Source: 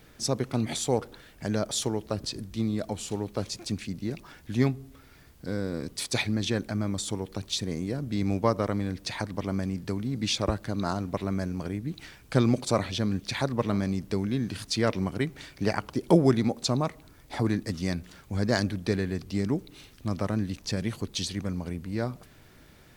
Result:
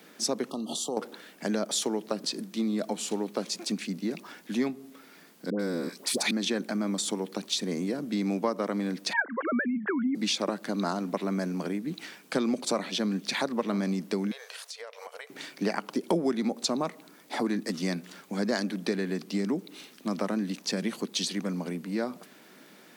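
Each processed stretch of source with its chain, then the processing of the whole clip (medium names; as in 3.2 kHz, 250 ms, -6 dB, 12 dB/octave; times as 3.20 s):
0.50–0.97 s: compression 2.5:1, threshold -34 dBFS + brick-wall FIR band-stop 1.3–2.7 kHz
5.50–6.31 s: treble shelf 8.3 kHz +4.5 dB + phase dispersion highs, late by 94 ms, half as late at 870 Hz
9.13–10.15 s: formants replaced by sine waves + resonant low-pass 1.6 kHz, resonance Q 7.5
14.31–15.30 s: brick-wall FIR high-pass 430 Hz + band-stop 4.8 kHz, Q 28 + compression 16:1, threshold -41 dBFS
whole clip: steep high-pass 180 Hz 48 dB/octave; compression 3:1, threshold -29 dBFS; trim +3.5 dB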